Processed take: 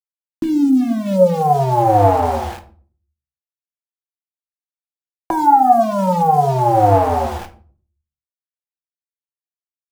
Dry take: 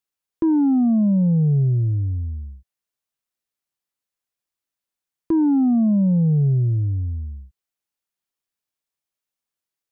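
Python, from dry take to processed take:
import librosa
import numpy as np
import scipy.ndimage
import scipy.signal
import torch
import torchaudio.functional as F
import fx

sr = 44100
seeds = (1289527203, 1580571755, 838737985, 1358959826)

y = fx.envelope_flatten(x, sr, power=0.1)
y = fx.over_compress(y, sr, threshold_db=-22.0, ratio=-0.5)
y = fx.filter_sweep_lowpass(y, sr, from_hz=260.0, to_hz=800.0, start_s=0.68, end_s=1.51, q=7.9)
y = np.where(np.abs(y) >= 10.0 ** (-35.0 / 20.0), y, 0.0)
y = fx.room_shoebox(y, sr, seeds[0], volume_m3=340.0, walls='furnished', distance_m=0.87)
y = F.gain(torch.from_numpy(y), 5.5).numpy()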